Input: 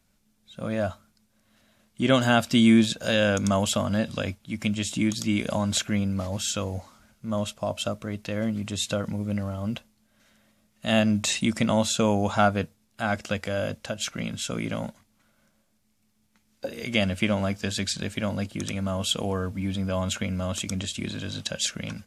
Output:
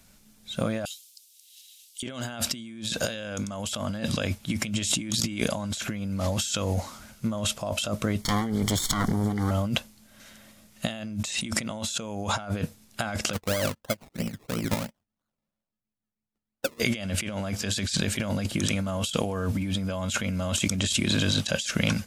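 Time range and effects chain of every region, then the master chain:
0.85–2.03 s: steep high-pass 2.9 kHz + tilt EQ +1.5 dB/octave
8.21–9.51 s: comb filter that takes the minimum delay 0.91 ms + Butterworth band-stop 2.6 kHz, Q 3.4
13.33–16.80 s: low-pass 2.2 kHz + decimation with a swept rate 23×, swing 60% 3 Hz + upward expansion 2.5:1, over -44 dBFS
whole clip: treble shelf 3.2 kHz +5 dB; compressor with a negative ratio -33 dBFS, ratio -1; trim +3.5 dB

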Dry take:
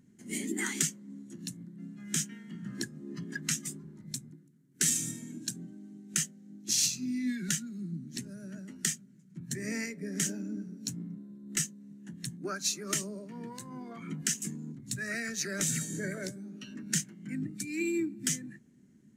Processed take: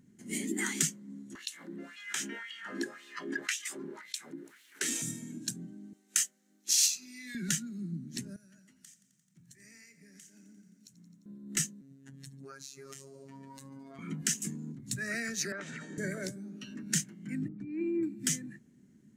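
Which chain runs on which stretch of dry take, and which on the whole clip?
1.35–5.02 s: tone controls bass -11 dB, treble -10 dB + LFO high-pass sine 1.9 Hz 280–3300 Hz + level flattener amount 50%
5.93–7.35 s: high-pass 730 Hz + treble shelf 6.9 kHz +4.5 dB
8.36–11.26 s: amplifier tone stack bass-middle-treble 5-5-5 + compression 5:1, threshold -53 dBFS + bit-crushed delay 87 ms, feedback 80%, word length 13-bit, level -15 dB
11.81–13.99 s: compression 10:1, threshold -42 dBFS + robot voice 136 Hz + feedback echo behind a high-pass 72 ms, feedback 80%, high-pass 2.5 kHz, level -24 dB
15.52–15.98 s: band-pass 270–2300 Hz + compression 10:1, threshold -40 dBFS + peaking EQ 1.1 kHz +7.5 dB 1.7 oct
17.48–18.03 s: Chebyshev low-pass 980 Hz + tape noise reduction on one side only decoder only
whole clip: none

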